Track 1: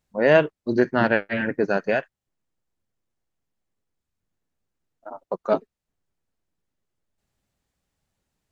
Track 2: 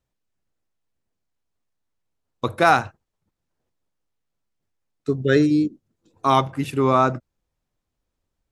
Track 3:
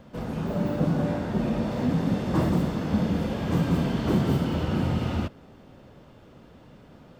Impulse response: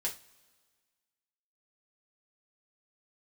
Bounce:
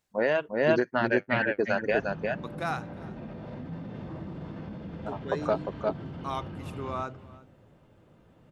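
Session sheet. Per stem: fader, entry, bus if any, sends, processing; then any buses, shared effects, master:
+1.0 dB, 0.00 s, bus A, no send, echo send -8.5 dB, reverb removal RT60 1.2 s
-15.5 dB, 0.00 s, bus A, no send, echo send -22 dB, none
-13.5 dB, 1.75 s, no bus, send -3.5 dB, echo send -6.5 dB, low-pass 3.2 kHz 12 dB/octave; peak limiter -24 dBFS, peak gain reduction 11 dB
bus A: 0.0 dB, bass shelf 220 Hz -11.5 dB; compression 6:1, threshold -22 dBFS, peak gain reduction 10.5 dB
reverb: on, pre-delay 3 ms
echo: delay 352 ms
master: peaking EQ 110 Hz +5 dB 0.51 oct

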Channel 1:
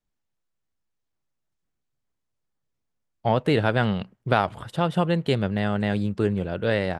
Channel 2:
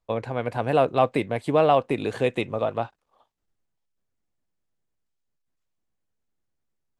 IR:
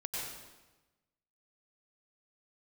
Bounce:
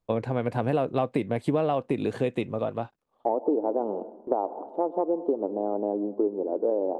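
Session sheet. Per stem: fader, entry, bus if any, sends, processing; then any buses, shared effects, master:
-1.5 dB, 0.00 s, send -16.5 dB, elliptic band-pass 290–920 Hz, stop band 40 dB; gate with hold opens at -40 dBFS
-2.5 dB, 0.00 s, no send, auto duck -7 dB, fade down 1.75 s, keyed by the first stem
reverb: on, RT60 1.1 s, pre-delay 87 ms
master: peaking EQ 220 Hz +8.5 dB 2.6 oct; compression, threshold -21 dBFS, peak gain reduction 9 dB

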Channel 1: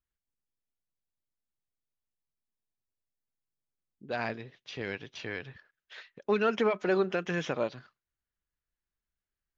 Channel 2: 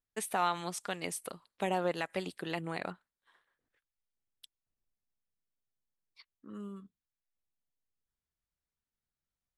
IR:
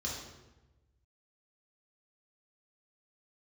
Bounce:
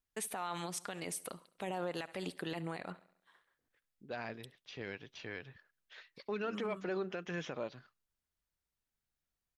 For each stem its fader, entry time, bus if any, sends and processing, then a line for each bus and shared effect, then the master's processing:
-7.0 dB, 0.00 s, no send, no echo send, none
+0.5 dB, 0.00 s, no send, echo send -23 dB, none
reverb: none
echo: feedback delay 69 ms, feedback 50%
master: peak limiter -29 dBFS, peak gain reduction 11.5 dB

